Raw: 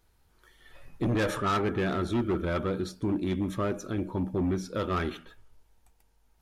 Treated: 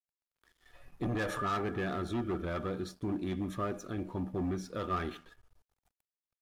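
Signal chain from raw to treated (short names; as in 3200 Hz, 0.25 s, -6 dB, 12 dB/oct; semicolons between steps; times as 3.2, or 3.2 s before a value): limiter -24 dBFS, peak gain reduction 3.5 dB; small resonant body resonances 730/1200/1700 Hz, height 10 dB, ringing for 85 ms; crossover distortion -57.5 dBFS; gain -4.5 dB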